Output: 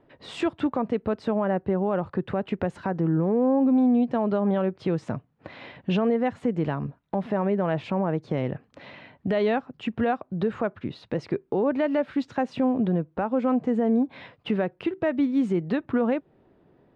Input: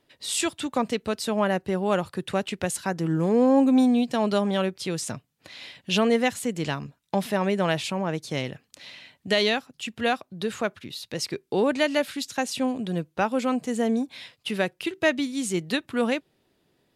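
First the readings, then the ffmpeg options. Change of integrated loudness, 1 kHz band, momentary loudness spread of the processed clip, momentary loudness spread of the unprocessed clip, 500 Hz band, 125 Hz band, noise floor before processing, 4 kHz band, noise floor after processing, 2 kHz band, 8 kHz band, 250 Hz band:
0.0 dB, -1.5 dB, 9 LU, 13 LU, 0.0 dB, +2.5 dB, -71 dBFS, -13.0 dB, -64 dBFS, -7.0 dB, under -20 dB, +1.0 dB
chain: -filter_complex "[0:a]lowpass=1200,asplit=2[s0][s1];[s1]acompressor=threshold=0.02:ratio=6,volume=1[s2];[s0][s2]amix=inputs=2:normalize=0,alimiter=limit=0.106:level=0:latency=1:release=161,volume=1.58"

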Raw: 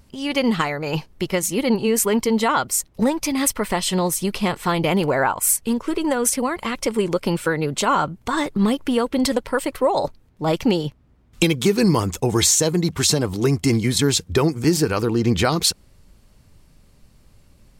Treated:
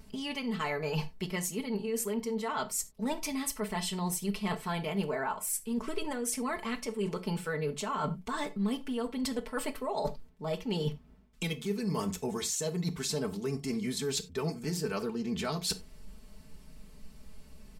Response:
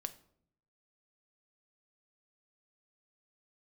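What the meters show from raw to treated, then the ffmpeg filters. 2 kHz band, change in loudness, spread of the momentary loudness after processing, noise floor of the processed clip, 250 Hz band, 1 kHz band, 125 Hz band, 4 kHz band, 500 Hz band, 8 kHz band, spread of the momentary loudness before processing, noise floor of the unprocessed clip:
-13.0 dB, -13.5 dB, 3 LU, -54 dBFS, -13.5 dB, -13.5 dB, -13.5 dB, -13.5 dB, -13.5 dB, -14.5 dB, 6 LU, -55 dBFS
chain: -filter_complex "[0:a]aecho=1:1:4.6:0.79,areverse,acompressor=threshold=0.0398:ratio=16,areverse[s0];[1:a]atrim=start_sample=2205,atrim=end_sample=4410[s1];[s0][s1]afir=irnorm=-1:irlink=0"

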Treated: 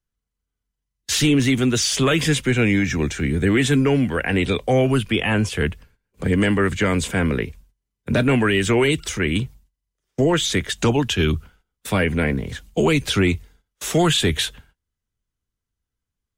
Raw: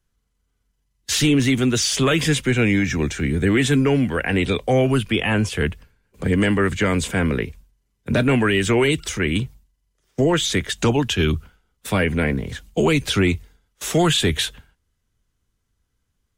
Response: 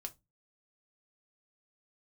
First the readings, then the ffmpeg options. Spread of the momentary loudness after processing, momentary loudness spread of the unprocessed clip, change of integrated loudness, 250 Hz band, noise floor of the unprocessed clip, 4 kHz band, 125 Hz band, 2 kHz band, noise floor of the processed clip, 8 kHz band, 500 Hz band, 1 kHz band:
9 LU, 9 LU, 0.0 dB, 0.0 dB, -73 dBFS, 0.0 dB, 0.0 dB, 0.0 dB, -83 dBFS, 0.0 dB, 0.0 dB, 0.0 dB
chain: -af "agate=range=0.282:threshold=0.00282:ratio=16:detection=peak"

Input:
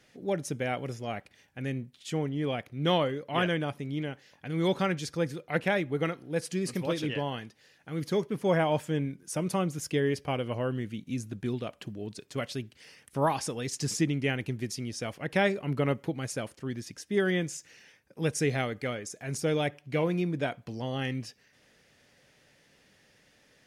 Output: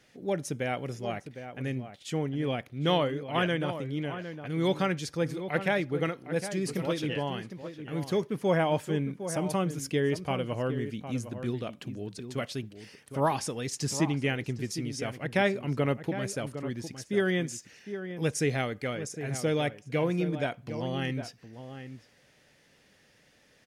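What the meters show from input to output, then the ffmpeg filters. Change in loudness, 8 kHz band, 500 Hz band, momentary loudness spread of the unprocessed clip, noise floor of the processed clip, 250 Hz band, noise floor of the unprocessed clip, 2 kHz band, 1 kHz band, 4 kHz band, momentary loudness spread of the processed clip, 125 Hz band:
0.0 dB, 0.0 dB, +0.5 dB, 10 LU, -63 dBFS, +0.5 dB, -64 dBFS, 0.0 dB, +0.5 dB, 0.0 dB, 11 LU, +0.5 dB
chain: -filter_complex "[0:a]asplit=2[s0][s1];[s1]adelay=758,volume=0.316,highshelf=f=4000:g=-17.1[s2];[s0][s2]amix=inputs=2:normalize=0"

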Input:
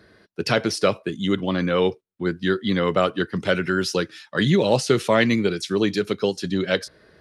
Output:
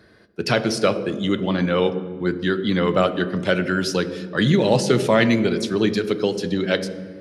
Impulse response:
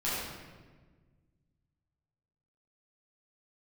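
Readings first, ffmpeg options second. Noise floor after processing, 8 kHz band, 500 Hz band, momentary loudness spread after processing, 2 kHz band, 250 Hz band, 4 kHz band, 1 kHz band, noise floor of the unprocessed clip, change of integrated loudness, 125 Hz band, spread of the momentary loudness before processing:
-52 dBFS, +0.5 dB, +1.5 dB, 7 LU, +1.0 dB, +2.0 dB, +0.5 dB, +1.0 dB, -59 dBFS, +1.5 dB, +2.5 dB, 8 LU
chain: -filter_complex "[0:a]asplit=2[s0][s1];[s1]equalizer=f=290:t=o:w=2.7:g=9.5[s2];[1:a]atrim=start_sample=2205[s3];[s2][s3]afir=irnorm=-1:irlink=0,volume=0.0841[s4];[s0][s4]amix=inputs=2:normalize=0"

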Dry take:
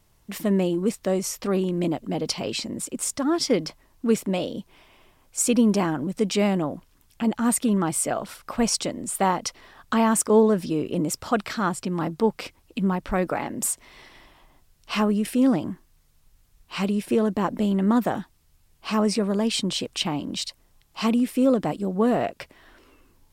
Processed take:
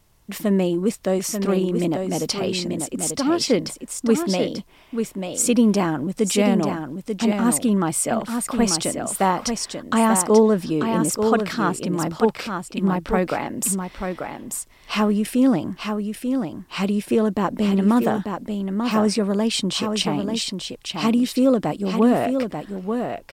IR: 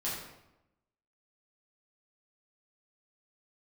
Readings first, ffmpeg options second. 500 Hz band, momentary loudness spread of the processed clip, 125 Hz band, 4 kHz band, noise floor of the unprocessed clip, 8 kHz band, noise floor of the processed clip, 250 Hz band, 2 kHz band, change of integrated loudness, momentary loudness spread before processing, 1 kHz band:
+3.5 dB, 10 LU, +3.5 dB, +3.5 dB, -61 dBFS, +3.5 dB, -50 dBFS, +3.5 dB, +3.5 dB, +2.5 dB, 10 LU, +3.5 dB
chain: -af "aecho=1:1:889:0.501,volume=1.33"

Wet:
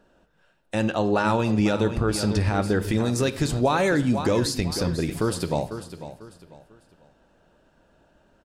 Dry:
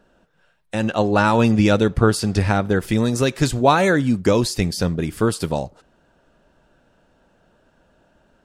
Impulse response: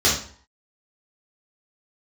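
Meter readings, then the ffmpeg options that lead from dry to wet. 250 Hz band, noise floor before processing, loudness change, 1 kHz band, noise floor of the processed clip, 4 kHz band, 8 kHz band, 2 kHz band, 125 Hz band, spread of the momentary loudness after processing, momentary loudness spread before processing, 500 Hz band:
-4.5 dB, -61 dBFS, -5.0 dB, -6.0 dB, -63 dBFS, -3.5 dB, -3.0 dB, -5.5 dB, -4.5 dB, 8 LU, 9 LU, -4.5 dB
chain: -filter_complex "[0:a]asplit=2[s0][s1];[s1]aecho=0:1:496|992|1488:0.211|0.0655|0.0203[s2];[s0][s2]amix=inputs=2:normalize=0,alimiter=limit=0.316:level=0:latency=1:release=111,asplit=2[s3][s4];[1:a]atrim=start_sample=2205,asetrate=31752,aresample=44100[s5];[s4][s5]afir=irnorm=-1:irlink=0,volume=0.0224[s6];[s3][s6]amix=inputs=2:normalize=0,volume=0.75"

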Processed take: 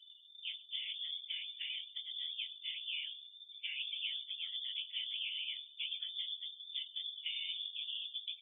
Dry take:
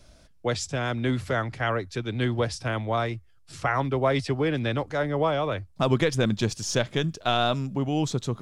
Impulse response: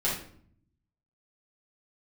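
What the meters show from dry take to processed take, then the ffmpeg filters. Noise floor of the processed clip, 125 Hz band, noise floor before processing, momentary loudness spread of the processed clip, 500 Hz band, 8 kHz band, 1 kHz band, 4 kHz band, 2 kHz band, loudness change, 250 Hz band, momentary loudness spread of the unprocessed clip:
-59 dBFS, under -40 dB, -56 dBFS, 5 LU, under -40 dB, under -40 dB, under -40 dB, -1.5 dB, -15.5 dB, -13.0 dB, under -40 dB, 6 LU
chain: -filter_complex "[0:a]acrossover=split=130|1400[s0][s1][s2];[s0]acompressor=threshold=0.00794:ratio=4[s3];[s1]acompressor=threshold=0.0158:ratio=4[s4];[s2]acompressor=threshold=0.00794:ratio=4[s5];[s3][s4][s5]amix=inputs=3:normalize=0,asplit=2[s6][s7];[s7]equalizer=f=2100:w=4.1:g=-13[s8];[1:a]atrim=start_sample=2205[s9];[s8][s9]afir=irnorm=-1:irlink=0,volume=0.0944[s10];[s6][s10]amix=inputs=2:normalize=0,acompressor=mode=upward:threshold=0.01:ratio=2.5,highshelf=f=1600:t=q:w=1.5:g=-12.5,aecho=1:1:129|258|387|516|645:0.106|0.0593|0.0332|0.0186|0.0104,afftfilt=real='hypot(re,im)*cos(2*PI*random(0))':imag='hypot(re,im)*sin(2*PI*random(1))':win_size=512:overlap=0.75,lowpass=f=3100:t=q:w=0.5098,lowpass=f=3100:t=q:w=0.6013,lowpass=f=3100:t=q:w=0.9,lowpass=f=3100:t=q:w=2.563,afreqshift=-3600,asplit=2[s11][s12];[s12]adelay=21,volume=0.282[s13];[s11][s13]amix=inputs=2:normalize=0,afftdn=nr=35:nf=-50,volume=0.708" -ar 48000 -c:a libvorbis -b:a 48k

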